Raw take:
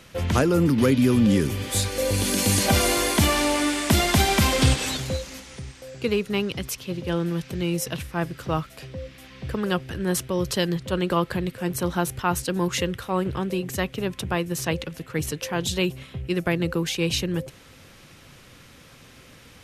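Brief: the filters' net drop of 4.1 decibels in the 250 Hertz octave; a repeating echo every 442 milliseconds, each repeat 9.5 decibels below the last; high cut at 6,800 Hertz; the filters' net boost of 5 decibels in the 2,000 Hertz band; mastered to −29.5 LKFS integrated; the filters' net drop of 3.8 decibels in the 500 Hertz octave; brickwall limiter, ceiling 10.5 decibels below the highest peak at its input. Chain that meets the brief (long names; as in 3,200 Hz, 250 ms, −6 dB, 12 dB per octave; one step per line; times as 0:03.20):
low-pass filter 6,800 Hz
parametric band 250 Hz −5 dB
parametric band 500 Hz −3.5 dB
parametric band 2,000 Hz +6.5 dB
brickwall limiter −17 dBFS
repeating echo 442 ms, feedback 33%, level −9.5 dB
level −1.5 dB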